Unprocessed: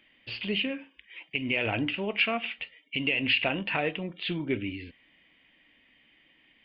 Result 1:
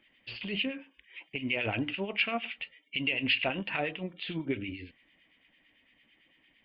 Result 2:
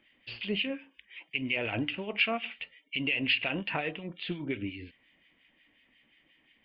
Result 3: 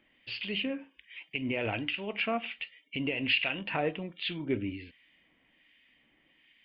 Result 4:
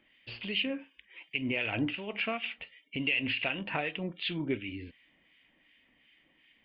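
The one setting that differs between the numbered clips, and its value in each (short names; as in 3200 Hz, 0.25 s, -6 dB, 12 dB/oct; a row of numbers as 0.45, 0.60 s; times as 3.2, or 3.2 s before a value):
harmonic tremolo, rate: 8.9, 5.6, 1.3, 2.7 Hz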